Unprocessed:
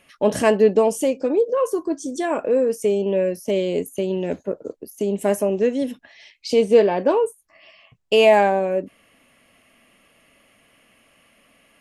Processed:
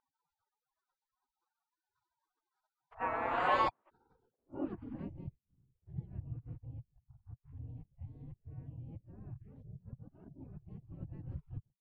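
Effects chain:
played backwards from end to start
gate on every frequency bin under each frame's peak −30 dB weak
low-pass filter sweep 1,100 Hz → 130 Hz, 0:03.81–0:05.28
level +10 dB

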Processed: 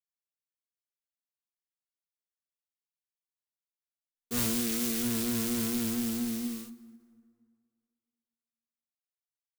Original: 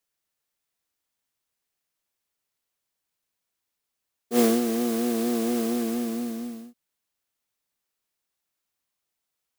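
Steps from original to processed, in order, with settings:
wavefolder on the positive side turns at −19.5 dBFS
low-shelf EQ 170 Hz −6 dB
0:04.39–0:05.03: centre clipping without the shift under −30 dBFS
leveller curve on the samples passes 5
guitar amp tone stack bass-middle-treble 6-0-2
dense smooth reverb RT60 2.1 s, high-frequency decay 0.6×, DRR 15 dB
every ending faded ahead of time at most 250 dB per second
level +3.5 dB

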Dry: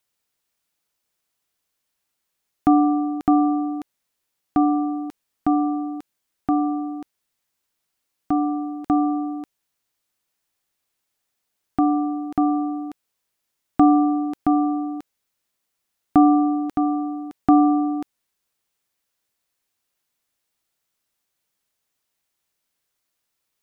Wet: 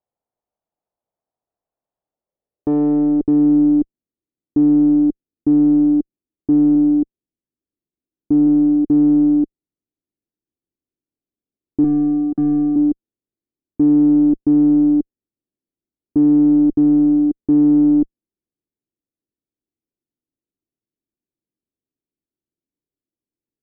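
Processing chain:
0:11.84–0:12.76: spectral tilt +4.5 dB per octave
tube saturation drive 25 dB, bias 0.5
0:06.75–0:08.47: low-pass filter 1,300 Hz
leveller curve on the samples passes 3
low-pass filter sweep 720 Hz → 320 Hz, 0:01.94–0:03.56
level +3.5 dB

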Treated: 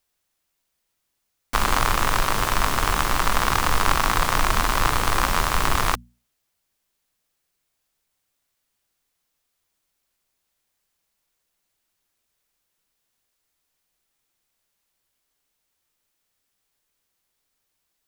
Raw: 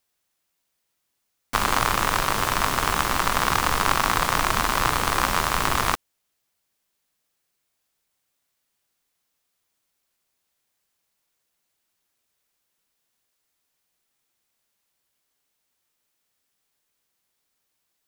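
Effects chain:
low-shelf EQ 64 Hz +10.5 dB
mains-hum notches 60/120/180/240 Hz

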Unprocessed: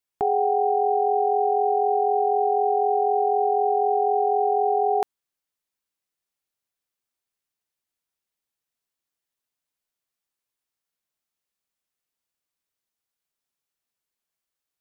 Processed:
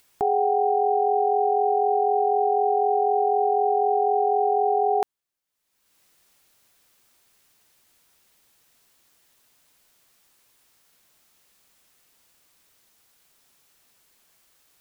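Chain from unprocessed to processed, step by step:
upward compression, threshold −43 dBFS

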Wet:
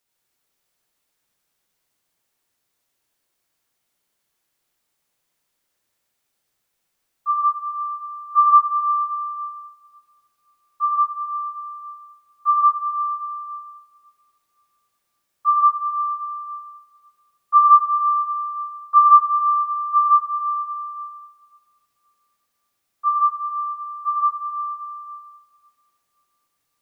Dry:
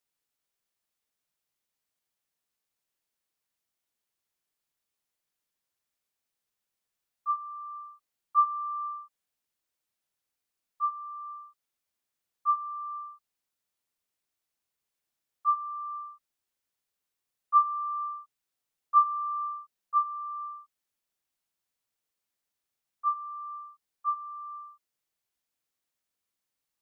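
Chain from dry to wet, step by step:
convolution reverb RT60 2.3 s, pre-delay 58 ms, DRR −2.5 dB
level +7.5 dB

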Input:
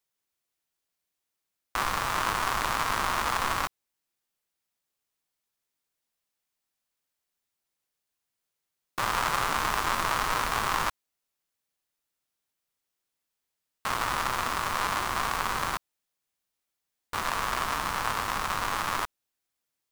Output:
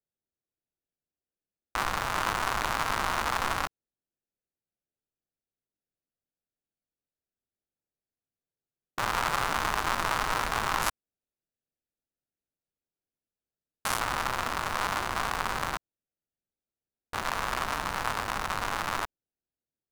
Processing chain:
adaptive Wiener filter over 41 samples
0:10.82–0:14.00: parametric band 11,000 Hz +11.5 dB 1.8 octaves

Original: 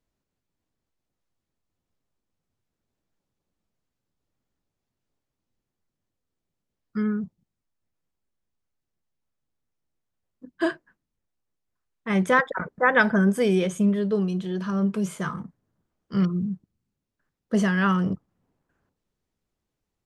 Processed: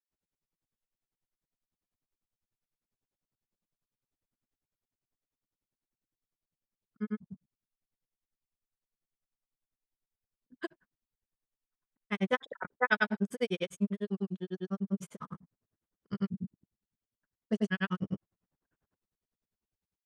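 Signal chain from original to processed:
dynamic equaliser 3,100 Hz, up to +6 dB, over −41 dBFS, Q 1.2
granular cloud 72 ms, grains 10 per second, pitch spread up and down by 0 semitones
level −6 dB

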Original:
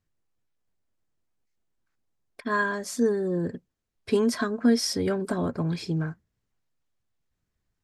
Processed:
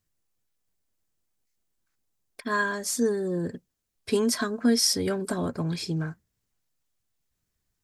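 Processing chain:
high-shelf EQ 4,400 Hz +11.5 dB
level −1.5 dB

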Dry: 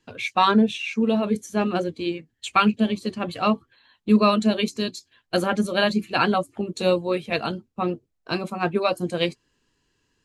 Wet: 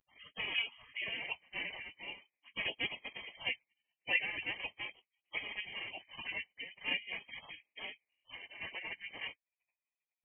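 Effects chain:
gate on every frequency bin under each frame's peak −30 dB weak
phaser with its sweep stopped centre 450 Hz, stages 6
voice inversion scrambler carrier 3,100 Hz
pitch vibrato 0.43 Hz 55 cents
spectral tilt +3 dB per octave
amplitude modulation by smooth noise, depth 50%
level +12 dB

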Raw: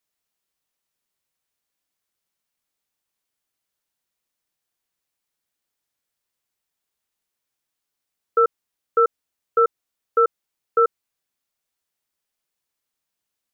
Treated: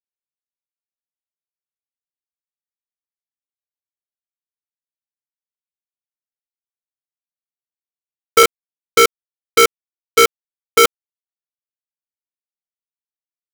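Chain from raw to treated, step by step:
0:08.43–0:10.85: low-pass filter 1,400 Hz 24 dB per octave
log-companded quantiser 2 bits
level −1 dB

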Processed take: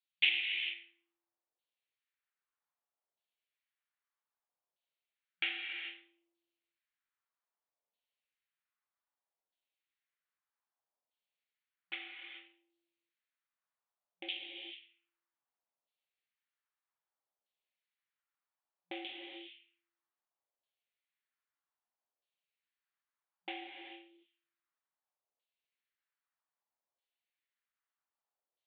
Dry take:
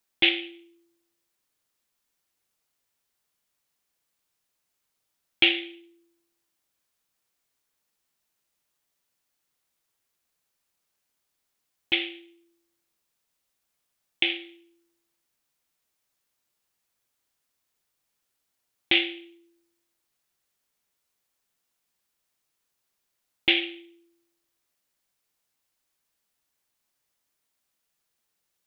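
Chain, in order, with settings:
auto-filter band-pass saw down 0.63 Hz 540–3,400 Hz
reverb whose tail is shaped and stops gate 460 ms flat, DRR 1.5 dB
brick-wall band-pass 180–4,600 Hz
level −6.5 dB

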